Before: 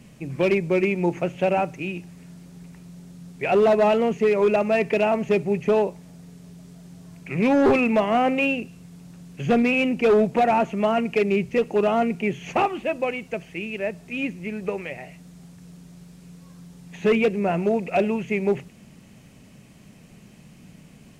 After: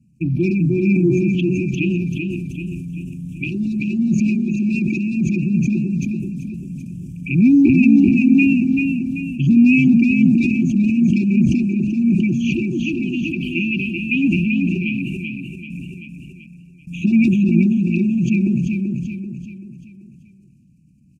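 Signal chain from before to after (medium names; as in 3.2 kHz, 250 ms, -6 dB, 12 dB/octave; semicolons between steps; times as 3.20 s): resonances exaggerated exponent 1.5; gate with hold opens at -37 dBFS; high-pass 54 Hz; peaking EQ 630 Hz -9.5 dB 0.99 oct; touch-sensitive phaser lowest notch 580 Hz, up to 3.1 kHz, full sweep at -24.5 dBFS; in parallel at -2 dB: compression, threshold -32 dBFS, peak gain reduction 13.5 dB; on the sum: brick-wall FIR band-stop 360–2300 Hz; on a send: feedback delay 386 ms, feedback 44%, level -4.5 dB; on the sum: decay stretcher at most 23 dB/s; trim +9 dB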